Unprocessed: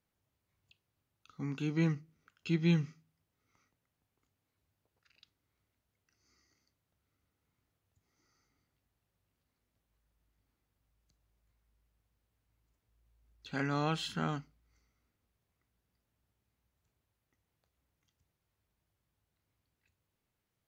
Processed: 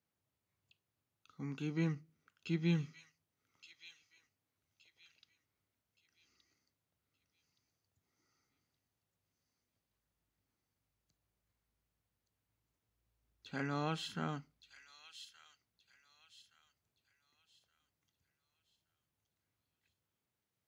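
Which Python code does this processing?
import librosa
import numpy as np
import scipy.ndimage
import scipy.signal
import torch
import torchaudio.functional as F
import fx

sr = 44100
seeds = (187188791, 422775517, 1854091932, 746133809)

y = scipy.signal.sosfilt(scipy.signal.butter(2, 85.0, 'highpass', fs=sr, output='sos'), x)
y = fx.echo_wet_highpass(y, sr, ms=1171, feedback_pct=35, hz=3100.0, wet_db=-6)
y = y * librosa.db_to_amplitude(-4.5)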